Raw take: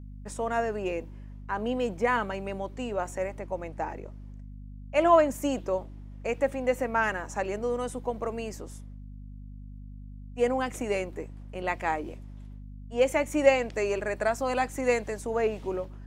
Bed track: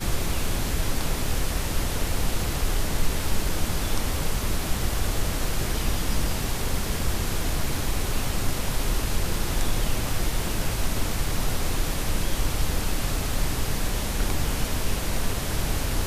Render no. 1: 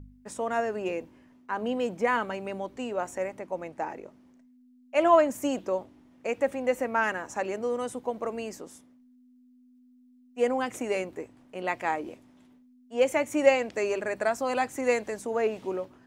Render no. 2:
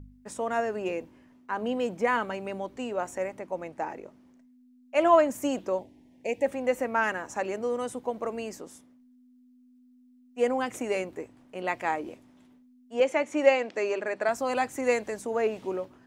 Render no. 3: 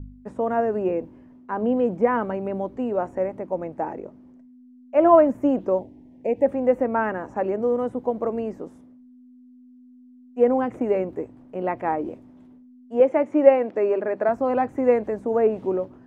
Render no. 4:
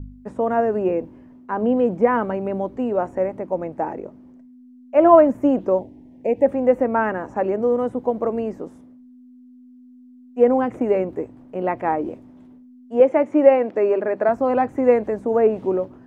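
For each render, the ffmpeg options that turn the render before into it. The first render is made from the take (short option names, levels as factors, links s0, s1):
-af "bandreject=f=50:t=h:w=4,bandreject=f=100:t=h:w=4,bandreject=f=150:t=h:w=4,bandreject=f=200:t=h:w=4"
-filter_complex "[0:a]asettb=1/sr,asplit=3[s0][s1][s2];[s0]atrim=end=5.794[s3];[s1]atrim=start=5.79:end=6.46,asetpts=PTS-STARTPTS,afade=t=in:d=0.004:c=qsin,afade=t=out:st=0.666:d=0.004:c=qsin,asuperstop=centerf=1300:order=4:qfactor=1.3[s4];[s2]atrim=start=6.456[s5];[s3][s4]acrossfade=d=0.004:c1=hsin:c2=qsin[s6];[s6][s5]acrossfade=d=0.004:c1=qsin:c2=hsin,asettb=1/sr,asplit=3[s7][s8][s9];[s7]atrim=end=13.004[s10];[s8]atrim=start=13:end=14.29,asetpts=PTS-STARTPTS,afade=t=in:d=0.004:c=qsin,afade=t=out:st=1.286:d=0.004:c=qsin,highpass=230,lowpass=5700[s11];[s9]atrim=start=14.286[s12];[s10][s11]acrossfade=d=0.004:c1=hsin:c2=qsin[s13];[s13][s12]acrossfade=d=0.004:c1=qsin:c2=hsin"
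-filter_complex "[0:a]acrossover=split=2600[s0][s1];[s1]acompressor=threshold=0.00141:ratio=4:attack=1:release=60[s2];[s0][s2]amix=inputs=2:normalize=0,tiltshelf=f=1400:g=9.5"
-af "volume=1.41,alimiter=limit=0.794:level=0:latency=1"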